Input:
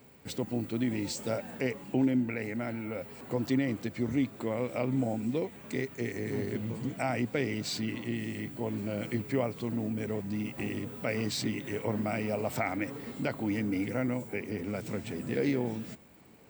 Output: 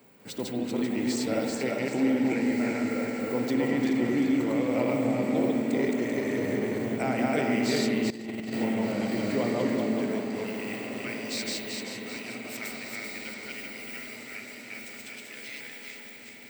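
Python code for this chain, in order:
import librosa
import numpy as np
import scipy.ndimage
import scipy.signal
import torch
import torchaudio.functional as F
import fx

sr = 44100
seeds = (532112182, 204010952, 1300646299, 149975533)

p1 = fx.reverse_delay_fb(x, sr, ms=194, feedback_pct=63, wet_db=0)
p2 = fx.filter_sweep_highpass(p1, sr, from_hz=180.0, to_hz=2400.0, start_s=9.97, end_s=11.26, q=0.75)
p3 = p2 + fx.echo_diffused(p2, sr, ms=1553, feedback_pct=52, wet_db=-10.5, dry=0)
p4 = fx.rev_spring(p3, sr, rt60_s=2.3, pass_ms=(49,), chirp_ms=55, drr_db=4.0)
y = fx.over_compress(p4, sr, threshold_db=-33.0, ratio=-0.5, at=(8.1, 8.53))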